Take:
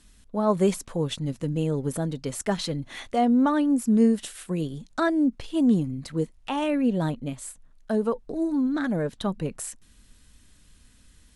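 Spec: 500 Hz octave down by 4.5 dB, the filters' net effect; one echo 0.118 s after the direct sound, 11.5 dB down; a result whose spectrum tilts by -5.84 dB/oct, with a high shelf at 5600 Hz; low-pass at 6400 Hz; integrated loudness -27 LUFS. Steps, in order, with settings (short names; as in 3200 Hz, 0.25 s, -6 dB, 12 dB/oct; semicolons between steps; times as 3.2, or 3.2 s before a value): LPF 6400 Hz; bell 500 Hz -6 dB; high shelf 5600 Hz +7 dB; echo 0.118 s -11.5 dB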